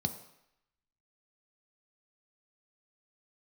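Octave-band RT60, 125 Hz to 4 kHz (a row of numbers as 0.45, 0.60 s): 0.65, 0.65, 0.75, 0.85, 0.90, 0.80 s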